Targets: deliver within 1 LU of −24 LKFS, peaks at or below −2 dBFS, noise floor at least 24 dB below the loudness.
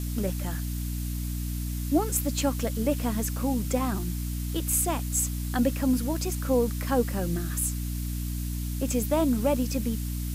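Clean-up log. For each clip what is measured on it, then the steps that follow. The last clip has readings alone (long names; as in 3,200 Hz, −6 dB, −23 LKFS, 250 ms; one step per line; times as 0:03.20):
mains hum 60 Hz; hum harmonics up to 300 Hz; level of the hum −29 dBFS; background noise floor −31 dBFS; target noise floor −52 dBFS; integrated loudness −28.0 LKFS; sample peak −11.0 dBFS; target loudness −24.0 LKFS
→ hum removal 60 Hz, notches 5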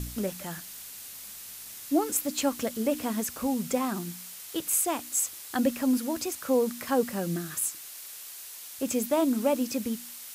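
mains hum none found; background noise floor −44 dBFS; target noise floor −53 dBFS
→ broadband denoise 9 dB, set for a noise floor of −44 dBFS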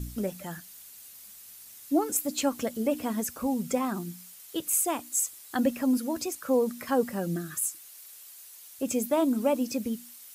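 background noise floor −49 dBFS; target noise floor −53 dBFS
→ broadband denoise 6 dB, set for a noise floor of −49 dBFS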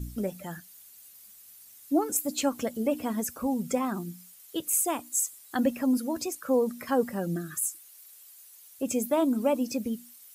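background noise floor −53 dBFS; integrated loudness −29.0 LKFS; sample peak −13.0 dBFS; target loudness −24.0 LKFS
→ level +5 dB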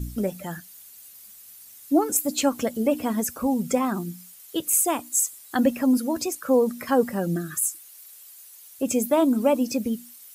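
integrated loudness −24.0 LKFS; sample peak −8.0 dBFS; background noise floor −48 dBFS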